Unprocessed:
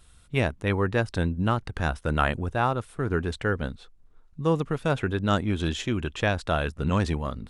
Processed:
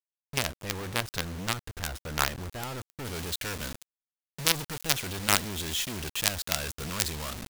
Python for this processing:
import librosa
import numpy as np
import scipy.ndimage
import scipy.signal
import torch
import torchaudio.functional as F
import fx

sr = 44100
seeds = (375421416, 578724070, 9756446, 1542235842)

y = fx.quant_companded(x, sr, bits=2)
y = fx.high_shelf(y, sr, hz=2200.0, db=fx.steps((0.0, 3.5), (3.04, 12.0)))
y = F.gain(torch.from_numpy(y), -11.0).numpy()